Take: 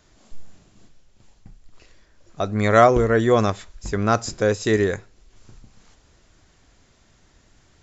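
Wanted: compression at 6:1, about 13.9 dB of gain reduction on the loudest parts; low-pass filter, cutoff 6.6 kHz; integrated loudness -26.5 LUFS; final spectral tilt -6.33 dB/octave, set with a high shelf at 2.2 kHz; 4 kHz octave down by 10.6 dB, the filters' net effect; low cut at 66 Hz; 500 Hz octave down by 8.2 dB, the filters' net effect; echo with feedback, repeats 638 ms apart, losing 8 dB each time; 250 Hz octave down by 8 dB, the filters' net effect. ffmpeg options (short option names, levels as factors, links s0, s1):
-af "highpass=66,lowpass=6600,equalizer=f=250:t=o:g=-8,equalizer=f=500:t=o:g=-7.5,highshelf=f=2200:g=-9,equalizer=f=4000:t=o:g=-4,acompressor=threshold=0.0355:ratio=6,aecho=1:1:638|1276|1914|2552|3190:0.398|0.159|0.0637|0.0255|0.0102,volume=2.66"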